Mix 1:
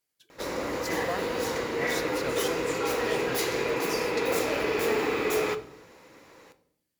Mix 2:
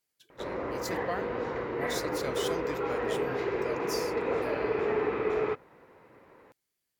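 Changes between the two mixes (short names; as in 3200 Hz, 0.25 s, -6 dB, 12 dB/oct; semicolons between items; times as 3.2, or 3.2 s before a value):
background: add LPF 1700 Hz 12 dB/oct; reverb: off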